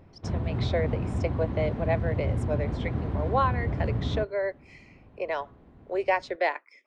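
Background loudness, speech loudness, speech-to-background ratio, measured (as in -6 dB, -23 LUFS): -30.5 LUFS, -31.0 LUFS, -0.5 dB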